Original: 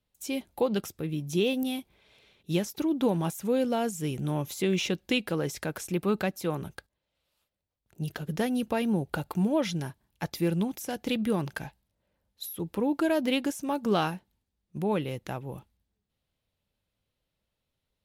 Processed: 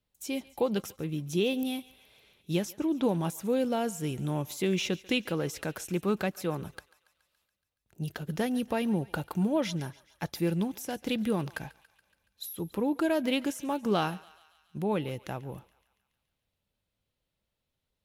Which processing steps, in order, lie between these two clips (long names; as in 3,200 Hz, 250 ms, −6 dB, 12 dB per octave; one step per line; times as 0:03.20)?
0:02.74–0:03.16: low-pass that shuts in the quiet parts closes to 730 Hz, open at −22.5 dBFS
feedback echo with a high-pass in the loop 141 ms, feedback 66%, high-pass 830 Hz, level −19 dB
level −1.5 dB